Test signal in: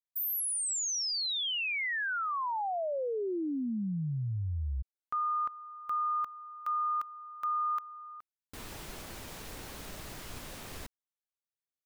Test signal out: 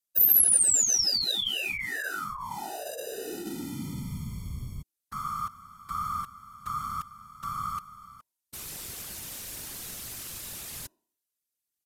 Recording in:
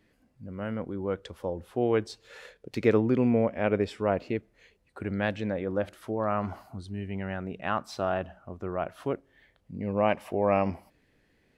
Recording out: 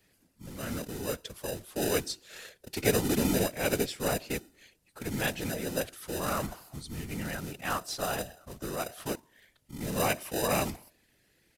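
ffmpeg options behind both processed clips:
ffmpeg -i in.wav -filter_complex "[0:a]bandreject=frequency=322.7:width_type=h:width=4,bandreject=frequency=645.4:width_type=h:width=4,bandreject=frequency=968.1:width_type=h:width=4,asplit=2[link_01][link_02];[link_02]acrusher=samples=40:mix=1:aa=0.000001,volume=-8dB[link_03];[link_01][link_03]amix=inputs=2:normalize=0,aresample=32000,aresample=44100,crystalizer=i=5.5:c=0,afftfilt=real='hypot(re,im)*cos(2*PI*random(0))':imag='hypot(re,im)*sin(2*PI*random(1))':win_size=512:overlap=0.75" out.wav

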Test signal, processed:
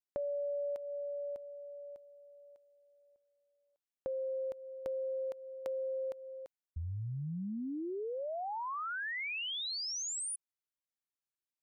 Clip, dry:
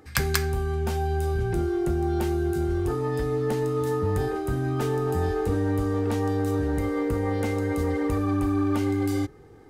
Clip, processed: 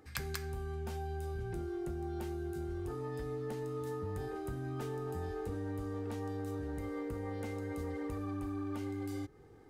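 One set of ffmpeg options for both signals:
ffmpeg -i in.wav -af "acompressor=threshold=-30dB:ratio=3,volume=-8dB" out.wav

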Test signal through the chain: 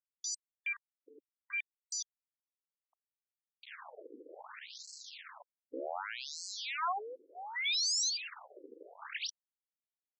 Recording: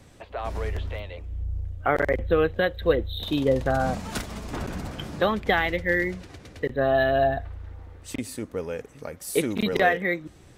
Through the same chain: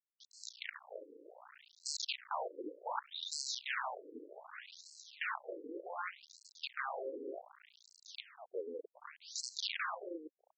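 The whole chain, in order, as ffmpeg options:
ffmpeg -i in.wav -af "acrusher=bits=4:dc=4:mix=0:aa=0.000001,aeval=exprs='(mod(10*val(0)+1,2)-1)/10':channel_layout=same,afftfilt=real='re*between(b*sr/1024,360*pow(5900/360,0.5+0.5*sin(2*PI*0.66*pts/sr))/1.41,360*pow(5900/360,0.5+0.5*sin(2*PI*0.66*pts/sr))*1.41)':imag='im*between(b*sr/1024,360*pow(5900/360,0.5+0.5*sin(2*PI*0.66*pts/sr))/1.41,360*pow(5900/360,0.5+0.5*sin(2*PI*0.66*pts/sr))*1.41)':win_size=1024:overlap=0.75,volume=-3.5dB" out.wav

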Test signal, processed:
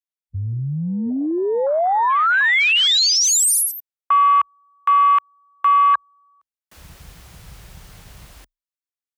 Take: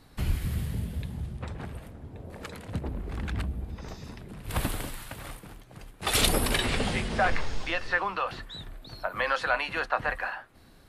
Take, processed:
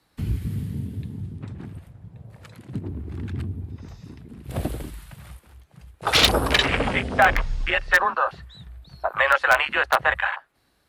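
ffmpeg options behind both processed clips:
ffmpeg -i in.wav -filter_complex "[0:a]afreqshift=27,afwtdn=0.0316,lowshelf=frequency=420:gain=-9.5,asplit=2[link_01][link_02];[link_02]aeval=exprs='(mod(6.31*val(0)+1,2)-1)/6.31':channel_layout=same,volume=-7.5dB[link_03];[link_01][link_03]amix=inputs=2:normalize=0,volume=7.5dB" out.wav

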